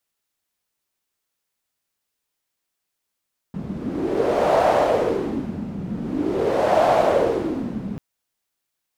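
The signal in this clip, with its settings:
wind from filtered noise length 4.44 s, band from 190 Hz, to 670 Hz, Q 4, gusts 2, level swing 12 dB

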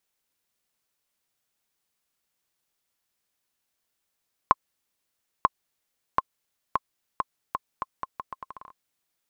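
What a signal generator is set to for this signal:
bouncing ball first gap 0.94 s, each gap 0.78, 1,060 Hz, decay 31 ms −3.5 dBFS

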